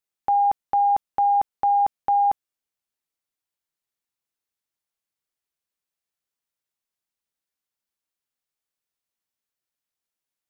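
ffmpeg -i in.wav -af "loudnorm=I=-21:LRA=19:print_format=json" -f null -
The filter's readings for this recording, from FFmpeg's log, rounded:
"input_i" : "-21.7",
"input_tp" : "-15.3",
"input_lra" : "7.0",
"input_thresh" : "-31.8",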